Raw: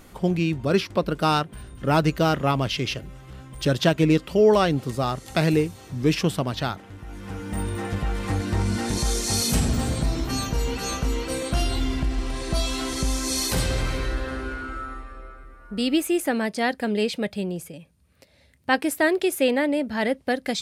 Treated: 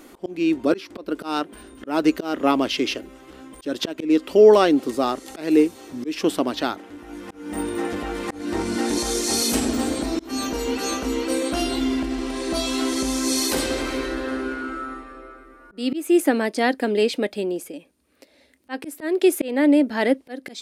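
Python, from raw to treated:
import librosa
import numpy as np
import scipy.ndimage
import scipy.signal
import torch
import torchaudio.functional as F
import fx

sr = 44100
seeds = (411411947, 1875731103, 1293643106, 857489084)

y = fx.low_shelf_res(x, sr, hz=200.0, db=-12.5, q=3.0)
y = fx.auto_swell(y, sr, attack_ms=260.0)
y = F.gain(torch.from_numpy(y), 2.0).numpy()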